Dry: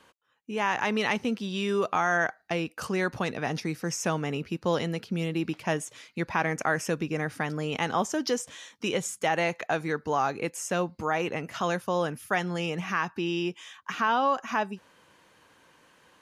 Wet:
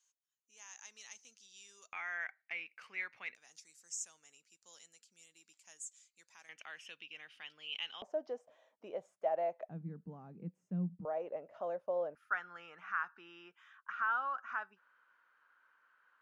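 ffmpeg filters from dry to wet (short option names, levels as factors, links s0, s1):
-af "asetnsamples=n=441:p=0,asendcmd='1.93 bandpass f 2200;3.35 bandpass f 7400;6.49 bandpass f 3000;8.02 bandpass f 640;9.69 bandpass f 180;11.05 bandpass f 590;12.15 bandpass f 1400',bandpass=f=6600:t=q:w=7.9:csg=0"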